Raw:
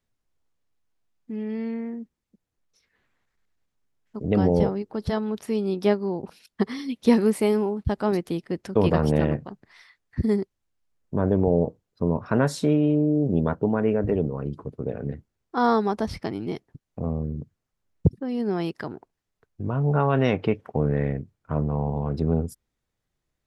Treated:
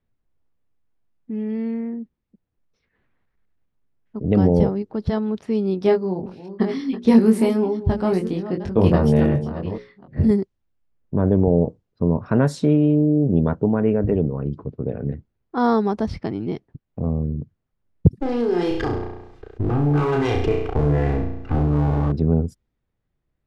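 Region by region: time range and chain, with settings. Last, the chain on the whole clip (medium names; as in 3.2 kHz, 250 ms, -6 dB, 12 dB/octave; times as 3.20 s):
5.79–10.31 s: chunks repeated in reverse 496 ms, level -12 dB + hum notches 60/120/180/240/300/360/420/480/540 Hz + doubling 22 ms -4 dB
18.20–22.12 s: comb filter that takes the minimum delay 2.5 ms + flutter echo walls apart 5.8 m, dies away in 0.48 s + level flattener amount 50%
whole clip: level-controlled noise filter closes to 3 kHz, open at -16 dBFS; bass shelf 480 Hz +7.5 dB; trim -1.5 dB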